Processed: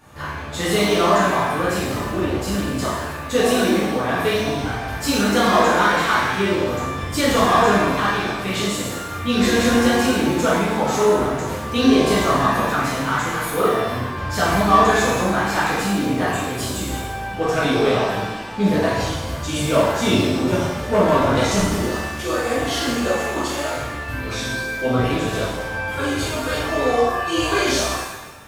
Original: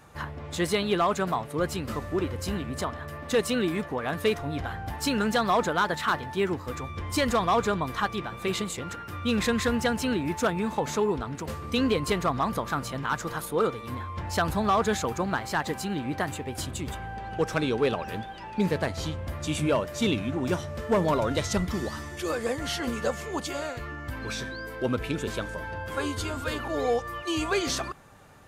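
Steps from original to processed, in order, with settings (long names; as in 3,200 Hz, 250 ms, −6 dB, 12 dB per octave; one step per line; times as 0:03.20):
on a send: flutter between parallel walls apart 7 metres, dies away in 0.22 s
on the sum: reverb with rising layers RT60 1 s, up +7 semitones, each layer −8 dB, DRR −8 dB
level −1 dB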